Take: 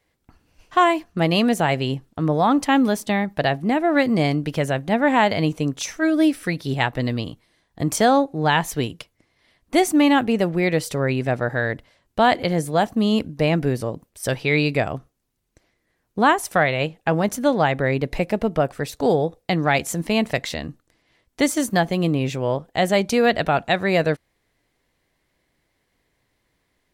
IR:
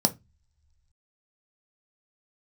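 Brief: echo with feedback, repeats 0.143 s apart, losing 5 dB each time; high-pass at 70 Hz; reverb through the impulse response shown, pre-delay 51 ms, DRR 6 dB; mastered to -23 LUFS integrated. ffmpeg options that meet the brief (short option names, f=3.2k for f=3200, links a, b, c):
-filter_complex "[0:a]highpass=70,aecho=1:1:143|286|429|572|715|858|1001:0.562|0.315|0.176|0.0988|0.0553|0.031|0.0173,asplit=2[a][b];[1:a]atrim=start_sample=2205,adelay=51[c];[b][c]afir=irnorm=-1:irlink=0,volume=-16.5dB[d];[a][d]amix=inputs=2:normalize=0,volume=-6.5dB"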